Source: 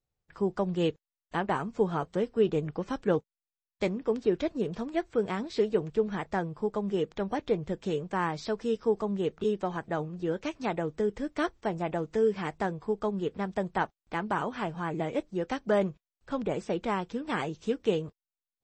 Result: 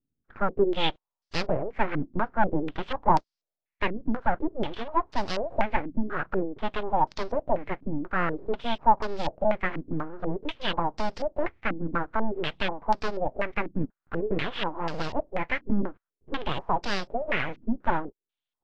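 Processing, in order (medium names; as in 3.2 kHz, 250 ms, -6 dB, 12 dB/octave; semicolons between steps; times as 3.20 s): full-wave rectifier; step-sequenced low-pass 4.1 Hz 270–5000 Hz; trim +3 dB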